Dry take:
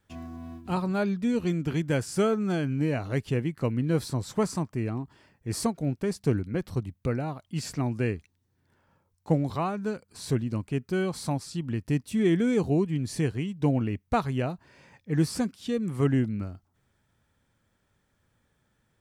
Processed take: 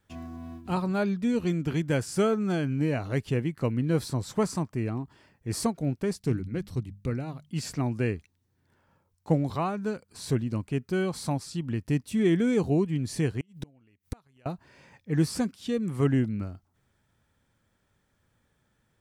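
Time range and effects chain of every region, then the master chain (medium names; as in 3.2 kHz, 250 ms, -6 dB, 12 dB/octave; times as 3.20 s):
6.16–7.50 s: peaking EQ 850 Hz -7.5 dB 2.1 oct + hum notches 50/100/150/200 Hz + loudspeaker Doppler distortion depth 0.12 ms
13.40–14.46 s: treble shelf 8.5 kHz +6 dB + inverted gate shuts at -22 dBFS, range -35 dB + tape noise reduction on one side only encoder only
whole clip: none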